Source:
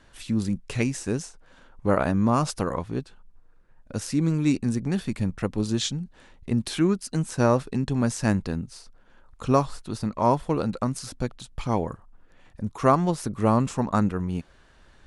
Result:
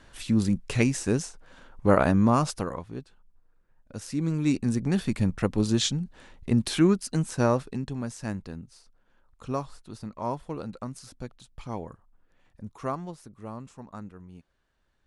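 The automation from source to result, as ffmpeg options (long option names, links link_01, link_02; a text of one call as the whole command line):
ffmpeg -i in.wav -af "volume=11.5dB,afade=type=out:start_time=2.13:duration=0.69:silence=0.316228,afade=type=in:start_time=3.96:duration=1.1:silence=0.334965,afade=type=out:start_time=6.86:duration=1.19:silence=0.266073,afade=type=out:start_time=12.69:duration=0.61:silence=0.375837" out.wav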